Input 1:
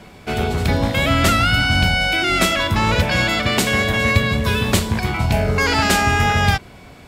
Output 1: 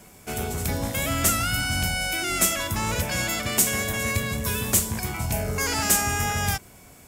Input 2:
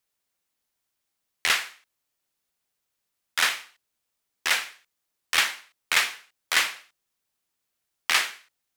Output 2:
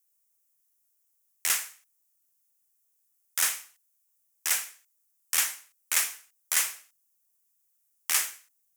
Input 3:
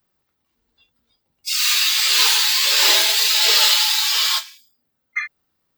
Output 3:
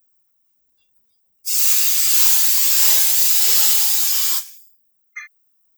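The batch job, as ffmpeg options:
-af "acontrast=22,aexciter=amount=7:drive=3.6:freq=5.8k,volume=-14dB"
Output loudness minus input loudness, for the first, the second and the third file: -7.0, -2.5, +2.0 LU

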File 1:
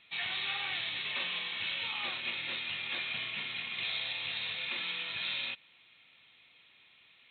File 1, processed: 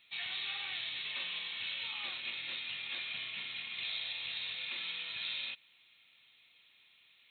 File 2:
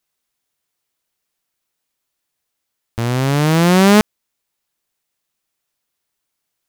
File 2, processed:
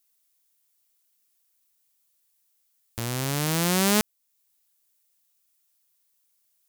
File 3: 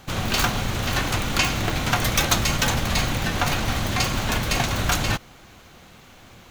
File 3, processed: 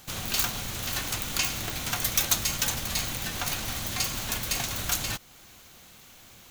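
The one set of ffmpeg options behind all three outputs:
-filter_complex "[0:a]asplit=2[a][b];[b]acompressor=threshold=-32dB:ratio=6,volume=-1.5dB[c];[a][c]amix=inputs=2:normalize=0,crystalizer=i=3.5:c=0,volume=-14dB"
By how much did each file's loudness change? -3.5, -10.5, -5.0 LU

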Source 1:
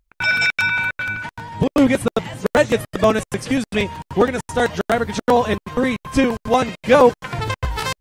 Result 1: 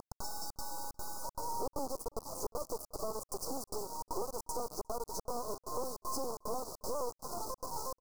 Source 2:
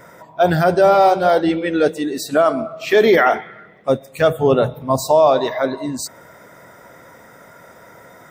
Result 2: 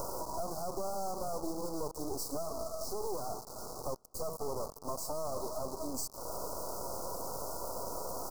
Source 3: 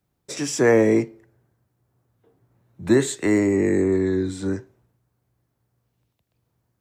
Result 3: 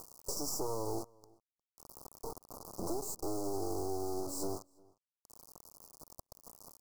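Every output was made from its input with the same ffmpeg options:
-filter_complex "[0:a]highpass=f=350:w=0.5412,highpass=f=350:w=1.3066,acompressor=mode=upward:threshold=-25dB:ratio=2.5,alimiter=limit=-11.5dB:level=0:latency=1:release=16,acompressor=threshold=-32dB:ratio=16,asoftclip=type=hard:threshold=-29.5dB,acrusher=bits=4:dc=4:mix=0:aa=0.000001,asuperstop=centerf=2400:order=12:qfactor=0.68,asplit=2[a][b];[b]adelay=355.7,volume=-26dB,highshelf=f=4k:g=-8[c];[a][c]amix=inputs=2:normalize=0,volume=2.5dB"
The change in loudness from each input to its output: -21.5, -23.0, -18.5 LU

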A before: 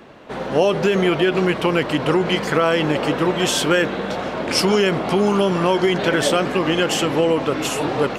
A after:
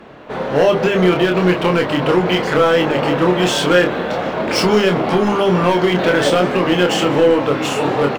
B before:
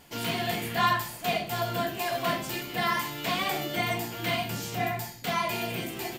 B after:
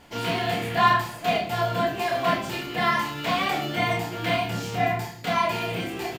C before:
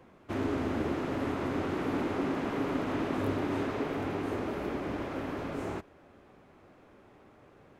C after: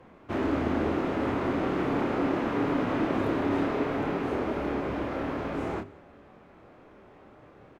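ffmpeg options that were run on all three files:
-filter_complex "[0:a]aemphasis=mode=reproduction:type=50kf,bandreject=f=50:t=h:w=6,bandreject=f=100:t=h:w=6,bandreject=f=150:t=h:w=6,bandreject=f=200:t=h:w=6,bandreject=f=250:t=h:w=6,bandreject=f=300:t=h:w=6,bandreject=f=350:t=h:w=6,bandreject=f=400:t=h:w=6,acrossover=split=3700[a][b];[a]volume=13dB,asoftclip=hard,volume=-13dB[c];[b]acrusher=bits=3:mode=log:mix=0:aa=0.000001[d];[c][d]amix=inputs=2:normalize=0,asplit=2[e][f];[f]adelay=28,volume=-4.5dB[g];[e][g]amix=inputs=2:normalize=0,aecho=1:1:192:0.075,volume=4dB"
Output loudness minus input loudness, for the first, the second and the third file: +3.5, +4.0, +4.5 LU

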